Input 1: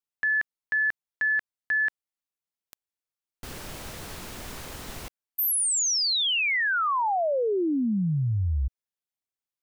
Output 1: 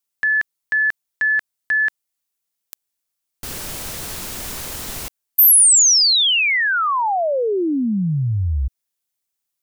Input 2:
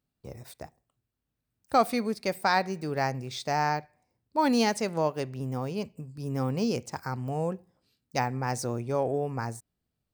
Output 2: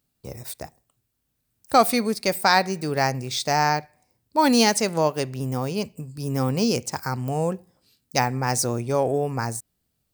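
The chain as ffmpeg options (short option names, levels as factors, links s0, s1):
-af "highshelf=f=4500:g=10,volume=1.88"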